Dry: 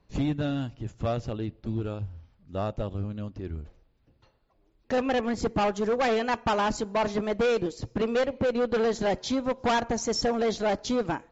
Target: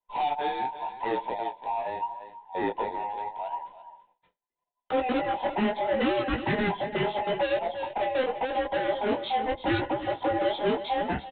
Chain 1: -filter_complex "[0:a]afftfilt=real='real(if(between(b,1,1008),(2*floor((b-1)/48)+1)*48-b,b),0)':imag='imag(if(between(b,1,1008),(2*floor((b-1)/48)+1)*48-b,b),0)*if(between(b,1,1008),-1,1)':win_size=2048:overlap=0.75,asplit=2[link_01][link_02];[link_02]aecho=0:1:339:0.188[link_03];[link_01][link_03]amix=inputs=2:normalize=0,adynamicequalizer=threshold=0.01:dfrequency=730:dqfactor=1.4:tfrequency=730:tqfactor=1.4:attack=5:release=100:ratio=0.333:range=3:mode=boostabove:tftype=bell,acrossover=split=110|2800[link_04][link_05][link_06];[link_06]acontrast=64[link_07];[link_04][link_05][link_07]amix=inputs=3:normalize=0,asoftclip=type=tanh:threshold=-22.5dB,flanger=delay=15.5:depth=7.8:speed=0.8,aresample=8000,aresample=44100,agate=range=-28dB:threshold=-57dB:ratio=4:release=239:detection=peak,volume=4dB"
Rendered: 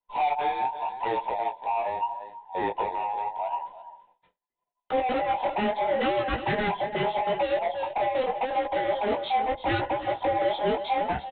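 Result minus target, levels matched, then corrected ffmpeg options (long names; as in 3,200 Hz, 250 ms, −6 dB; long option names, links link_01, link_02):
250 Hz band −5.0 dB
-filter_complex "[0:a]afftfilt=real='real(if(between(b,1,1008),(2*floor((b-1)/48)+1)*48-b,b),0)':imag='imag(if(between(b,1,1008),(2*floor((b-1)/48)+1)*48-b,b),0)*if(between(b,1,1008),-1,1)':win_size=2048:overlap=0.75,asplit=2[link_01][link_02];[link_02]aecho=0:1:339:0.188[link_03];[link_01][link_03]amix=inputs=2:normalize=0,adynamicequalizer=threshold=0.01:dfrequency=270:dqfactor=1.4:tfrequency=270:tqfactor=1.4:attack=5:release=100:ratio=0.333:range=3:mode=boostabove:tftype=bell,acrossover=split=110|2800[link_04][link_05][link_06];[link_06]acontrast=64[link_07];[link_04][link_05][link_07]amix=inputs=3:normalize=0,asoftclip=type=tanh:threshold=-22.5dB,flanger=delay=15.5:depth=7.8:speed=0.8,aresample=8000,aresample=44100,agate=range=-28dB:threshold=-57dB:ratio=4:release=239:detection=peak,volume=4dB"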